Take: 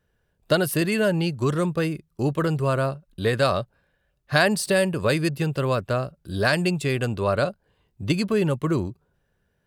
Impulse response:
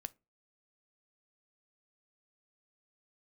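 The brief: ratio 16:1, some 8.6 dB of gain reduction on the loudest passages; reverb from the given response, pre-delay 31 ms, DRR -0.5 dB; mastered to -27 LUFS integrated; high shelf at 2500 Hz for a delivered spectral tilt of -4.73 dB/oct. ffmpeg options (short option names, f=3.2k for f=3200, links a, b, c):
-filter_complex "[0:a]highshelf=f=2.5k:g=8,acompressor=threshold=-21dB:ratio=16,asplit=2[a][b];[1:a]atrim=start_sample=2205,adelay=31[c];[b][c]afir=irnorm=-1:irlink=0,volume=4dB[d];[a][d]amix=inputs=2:normalize=0,volume=-3.5dB"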